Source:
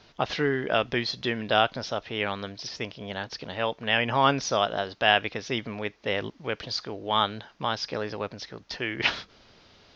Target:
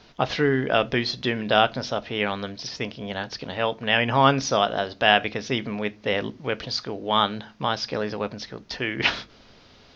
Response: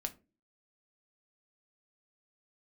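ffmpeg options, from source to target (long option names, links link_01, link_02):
-filter_complex "[0:a]asplit=2[link_01][link_02];[1:a]atrim=start_sample=2205,lowshelf=frequency=430:gain=5.5[link_03];[link_02][link_03]afir=irnorm=-1:irlink=0,volume=-4dB[link_04];[link_01][link_04]amix=inputs=2:normalize=0,volume=-1dB"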